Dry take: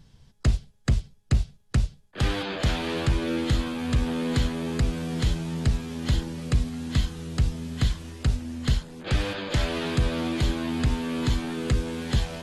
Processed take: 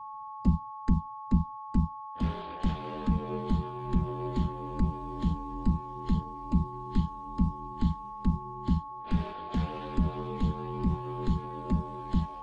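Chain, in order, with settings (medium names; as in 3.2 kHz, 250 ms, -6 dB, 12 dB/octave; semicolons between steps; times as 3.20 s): whistle 980 Hz -30 dBFS; ring modulator 120 Hz; spectral contrast expander 1.5:1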